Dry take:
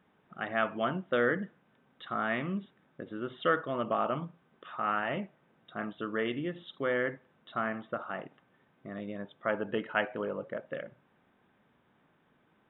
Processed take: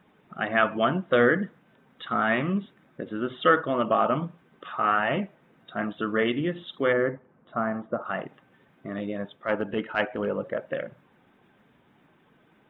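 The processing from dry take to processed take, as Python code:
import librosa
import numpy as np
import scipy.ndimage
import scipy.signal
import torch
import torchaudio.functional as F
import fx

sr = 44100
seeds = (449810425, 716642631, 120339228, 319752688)

y = fx.spec_quant(x, sr, step_db=15)
y = fx.lowpass(y, sr, hz=fx.line((6.92, 1400.0), (8.04, 1000.0)), slope=12, at=(6.92, 8.04), fade=0.02)
y = fx.transient(y, sr, attack_db=-8, sustain_db=-3, at=(9.35, 10.27), fade=0.02)
y = y * librosa.db_to_amplitude(8.0)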